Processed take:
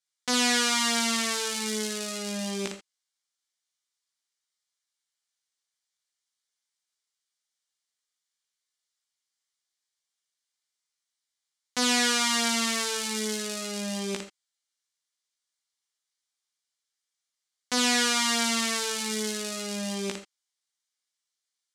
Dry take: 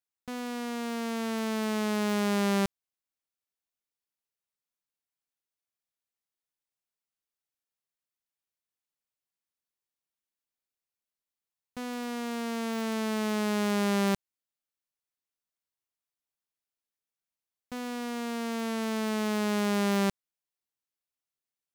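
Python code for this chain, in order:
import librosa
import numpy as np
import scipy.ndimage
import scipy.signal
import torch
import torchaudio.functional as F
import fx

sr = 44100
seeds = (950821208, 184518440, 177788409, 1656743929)

y = np.minimum(x, 2.0 * 10.0 ** (-34.0 / 20.0) - x)
y = fx.high_shelf(y, sr, hz=11000.0, db=-10.5)
y = fx.notch(y, sr, hz=2600.0, q=6.5)
y = fx.leveller(y, sr, passes=3)
y = fx.weighting(y, sr, curve='ITU-R 468')
y = fx.room_early_taps(y, sr, ms=(16, 56), db=(-4.0, -4.5))
y = fx.rev_gated(y, sr, seeds[0], gate_ms=100, shape='rising', drr_db=8.0)
y = y * librosa.db_to_amplitude(4.5)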